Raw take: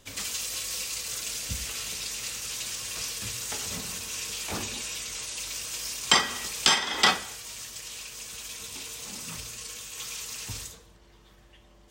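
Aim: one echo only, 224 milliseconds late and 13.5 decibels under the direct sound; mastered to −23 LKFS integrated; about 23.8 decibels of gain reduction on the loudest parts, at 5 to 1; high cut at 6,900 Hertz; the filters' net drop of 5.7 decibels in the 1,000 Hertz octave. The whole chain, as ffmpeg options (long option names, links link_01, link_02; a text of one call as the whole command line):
ffmpeg -i in.wav -af "lowpass=6900,equalizer=frequency=1000:width_type=o:gain=-7.5,acompressor=threshold=-47dB:ratio=5,aecho=1:1:224:0.211,volume=23dB" out.wav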